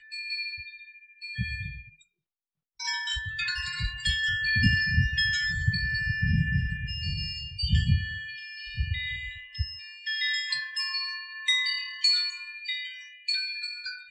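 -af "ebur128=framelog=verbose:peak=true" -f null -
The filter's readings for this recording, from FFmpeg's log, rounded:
Integrated loudness:
  I:         -28.0 LUFS
  Threshold: -38.4 LUFS
Loudness range:
  LRA:         7.4 LU
  Threshold: -48.1 LUFS
  LRA low:   -33.0 LUFS
  LRA high:  -25.6 LUFS
True peak:
  Peak:      -10.0 dBFS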